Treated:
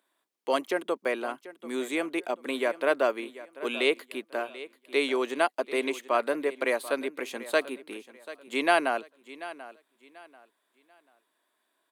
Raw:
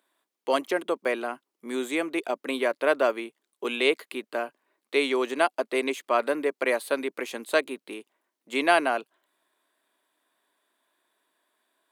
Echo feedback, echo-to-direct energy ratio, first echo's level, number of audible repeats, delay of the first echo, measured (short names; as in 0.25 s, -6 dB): 28%, -16.0 dB, -16.5 dB, 2, 0.738 s